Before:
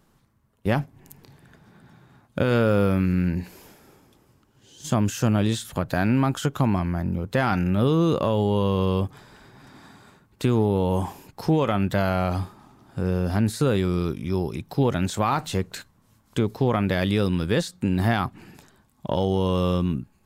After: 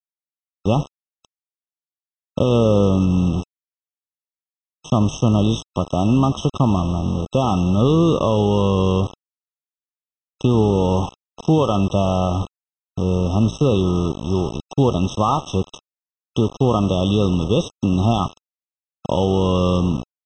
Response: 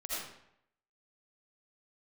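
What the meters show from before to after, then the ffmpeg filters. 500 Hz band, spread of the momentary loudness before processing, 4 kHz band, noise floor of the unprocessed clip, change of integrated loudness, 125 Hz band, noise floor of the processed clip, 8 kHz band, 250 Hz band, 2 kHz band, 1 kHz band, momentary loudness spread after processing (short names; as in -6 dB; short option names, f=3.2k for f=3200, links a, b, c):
+5.0 dB, 10 LU, +5.0 dB, -63 dBFS, +5.0 dB, +5.0 dB, under -85 dBFS, +1.5 dB, +5.0 dB, -7.5 dB, +4.5 dB, 9 LU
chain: -filter_complex "[0:a]asplit=5[a][b][c][d][e];[b]adelay=86,afreqshift=-57,volume=-16dB[f];[c]adelay=172,afreqshift=-114,volume=-23.7dB[g];[d]adelay=258,afreqshift=-171,volume=-31.5dB[h];[e]adelay=344,afreqshift=-228,volume=-39.2dB[i];[a][f][g][h][i]amix=inputs=5:normalize=0,acontrast=33,aresample=16000,aeval=exprs='val(0)*gte(abs(val(0)),0.0596)':c=same,aresample=44100,afftfilt=real='re*eq(mod(floor(b*sr/1024/1300),2),0)':imag='im*eq(mod(floor(b*sr/1024/1300),2),0)':win_size=1024:overlap=0.75"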